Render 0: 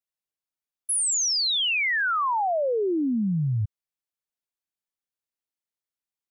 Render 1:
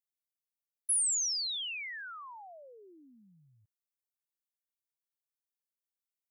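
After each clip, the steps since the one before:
first difference
level −6 dB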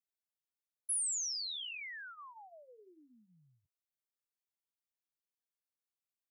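flanger 0.55 Hz, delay 4.4 ms, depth 8 ms, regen −44%
level −1.5 dB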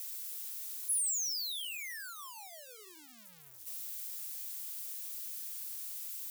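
spike at every zero crossing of −35.5 dBFS

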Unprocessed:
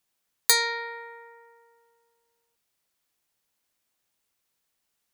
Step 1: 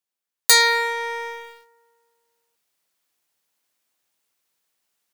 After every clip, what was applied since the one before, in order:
automatic gain control gain up to 12.5 dB
low-shelf EQ 130 Hz −11.5 dB
leveller curve on the samples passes 3
level −3.5 dB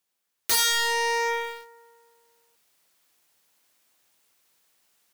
in parallel at +3 dB: downward compressor, threshold −25 dBFS, peak gain reduction 13.5 dB
on the sum: wave folding −16.5 dBFS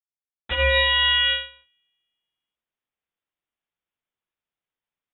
mu-law and A-law mismatch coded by A
voice inversion scrambler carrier 3,800 Hz
expander for the loud parts 2.5 to 1, over −37 dBFS
level +7.5 dB

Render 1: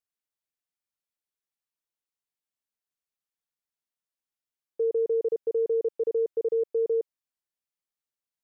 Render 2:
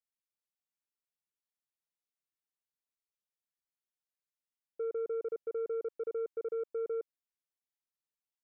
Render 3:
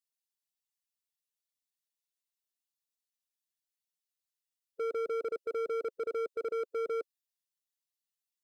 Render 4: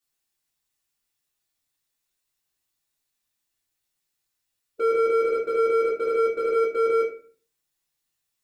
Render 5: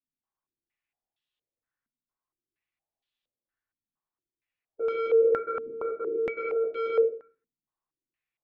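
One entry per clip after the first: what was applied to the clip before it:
soft clipping −22.5 dBFS, distortion −21 dB; level −7.5 dB
spectral dynamics exaggerated over time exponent 1.5; hard clipping −37.5 dBFS, distortion −13 dB; level +6 dB
convolution reverb RT60 0.40 s, pre-delay 3 ms, DRR −8 dB; level +4 dB
low-pass on a step sequencer 4.3 Hz 240–3,300 Hz; level −8.5 dB

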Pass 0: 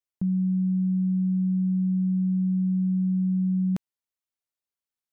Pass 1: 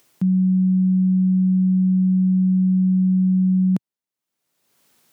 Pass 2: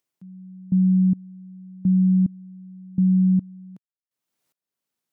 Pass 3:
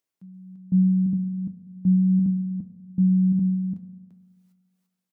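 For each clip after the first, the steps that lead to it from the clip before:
high-pass filter 130 Hz 24 dB per octave; low-shelf EQ 440 Hz +8.5 dB; upward compression, threshold −36 dBFS
gate pattern ".......xxxx" 146 BPM −24 dB
single-tap delay 342 ms −4.5 dB; convolution reverb RT60 1.4 s, pre-delay 3 ms, DRR 9 dB; flanger 0.76 Hz, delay 9.6 ms, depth 1.4 ms, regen +59%; level +1 dB

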